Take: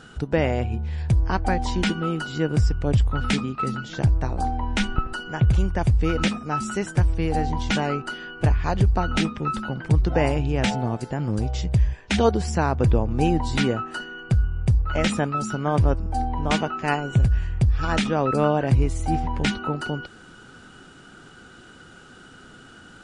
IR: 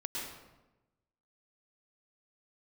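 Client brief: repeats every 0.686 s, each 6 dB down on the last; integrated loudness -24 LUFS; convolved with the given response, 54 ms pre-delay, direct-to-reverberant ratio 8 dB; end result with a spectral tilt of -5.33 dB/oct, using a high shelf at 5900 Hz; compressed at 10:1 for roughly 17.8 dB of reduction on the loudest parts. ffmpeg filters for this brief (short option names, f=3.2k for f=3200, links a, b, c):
-filter_complex "[0:a]highshelf=f=5.9k:g=5,acompressor=threshold=-33dB:ratio=10,aecho=1:1:686|1372|2058|2744|3430|4116:0.501|0.251|0.125|0.0626|0.0313|0.0157,asplit=2[a][b];[1:a]atrim=start_sample=2205,adelay=54[c];[b][c]afir=irnorm=-1:irlink=0,volume=-10dB[d];[a][d]amix=inputs=2:normalize=0,volume=12.5dB"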